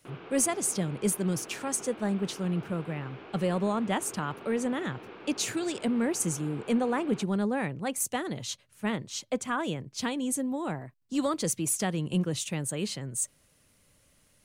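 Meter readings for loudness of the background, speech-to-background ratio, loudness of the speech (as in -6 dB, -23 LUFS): -46.0 LUFS, 15.5 dB, -30.5 LUFS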